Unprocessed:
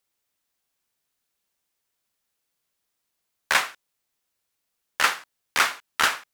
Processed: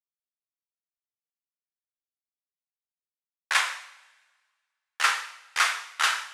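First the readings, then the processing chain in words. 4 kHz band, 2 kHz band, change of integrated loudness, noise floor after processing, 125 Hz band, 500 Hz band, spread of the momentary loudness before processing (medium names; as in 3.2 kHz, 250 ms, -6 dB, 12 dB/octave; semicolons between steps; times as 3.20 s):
-1.0 dB, -1.5 dB, -2.0 dB, under -85 dBFS, no reading, -9.0 dB, 12 LU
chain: high-pass 900 Hz 12 dB/octave; expander -37 dBFS; low-pass 11 kHz 24 dB/octave; two-slope reverb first 0.74 s, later 2.7 s, from -18 dB, DRR 2.5 dB; three bands expanded up and down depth 40%; trim -3.5 dB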